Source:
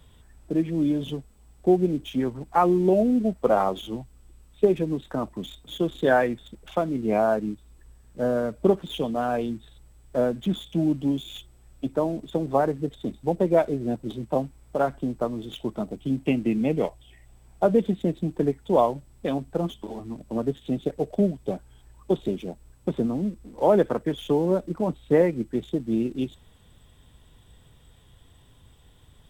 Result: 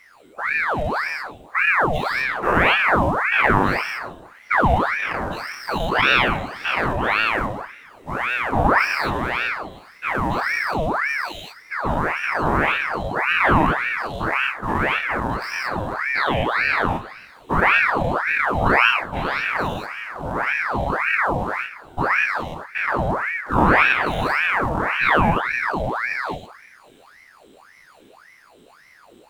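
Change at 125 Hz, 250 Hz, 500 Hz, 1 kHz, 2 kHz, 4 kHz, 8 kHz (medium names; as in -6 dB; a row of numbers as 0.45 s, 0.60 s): +3.5 dB, -3.0 dB, -2.5 dB, +10.0 dB, +21.5 dB, +11.5 dB, no reading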